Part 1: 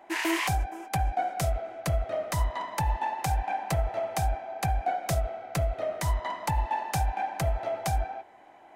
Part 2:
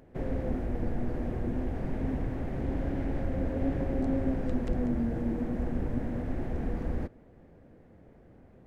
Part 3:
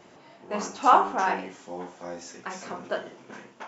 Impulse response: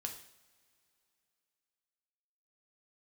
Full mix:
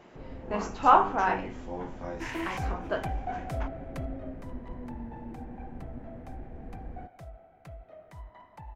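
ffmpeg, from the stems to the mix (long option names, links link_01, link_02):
-filter_complex "[0:a]adynamicequalizer=threshold=0.00708:dfrequency=2000:dqfactor=0.7:tfrequency=2000:tqfactor=0.7:attack=5:release=100:ratio=0.375:range=2:mode=cutabove:tftype=highshelf,adelay=2100,volume=-7dB,afade=type=out:start_time=3.8:duration=0.53:silence=0.251189[link_01];[1:a]volume=-12dB[link_02];[2:a]volume=-1dB[link_03];[link_01][link_02][link_03]amix=inputs=3:normalize=0,bass=frequency=250:gain=1,treble=frequency=4000:gain=-10"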